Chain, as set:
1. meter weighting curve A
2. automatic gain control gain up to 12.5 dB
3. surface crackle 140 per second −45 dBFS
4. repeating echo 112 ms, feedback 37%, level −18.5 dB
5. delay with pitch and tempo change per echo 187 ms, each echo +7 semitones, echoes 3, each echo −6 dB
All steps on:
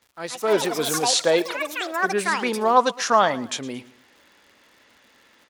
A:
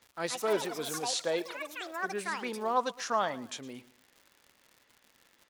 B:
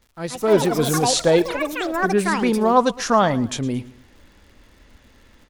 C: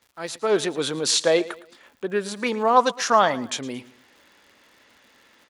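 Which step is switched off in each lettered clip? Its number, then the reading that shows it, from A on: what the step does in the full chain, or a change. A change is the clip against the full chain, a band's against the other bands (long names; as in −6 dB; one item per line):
2, change in momentary loudness spread −1 LU
1, 125 Hz band +13.0 dB
5, change in momentary loudness spread +5 LU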